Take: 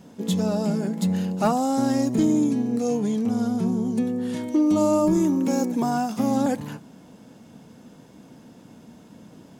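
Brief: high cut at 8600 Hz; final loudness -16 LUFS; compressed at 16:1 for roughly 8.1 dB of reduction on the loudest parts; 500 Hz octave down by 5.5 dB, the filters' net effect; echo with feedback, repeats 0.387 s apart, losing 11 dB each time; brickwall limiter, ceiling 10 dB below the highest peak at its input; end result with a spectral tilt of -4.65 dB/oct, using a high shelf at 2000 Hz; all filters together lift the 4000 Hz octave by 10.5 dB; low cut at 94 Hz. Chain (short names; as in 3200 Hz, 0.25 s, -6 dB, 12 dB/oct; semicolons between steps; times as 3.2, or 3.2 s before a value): HPF 94 Hz; LPF 8600 Hz; bell 500 Hz -8 dB; high shelf 2000 Hz +7.5 dB; bell 4000 Hz +6 dB; compressor 16:1, threshold -26 dBFS; limiter -25.5 dBFS; feedback echo 0.387 s, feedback 28%, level -11 dB; gain +17 dB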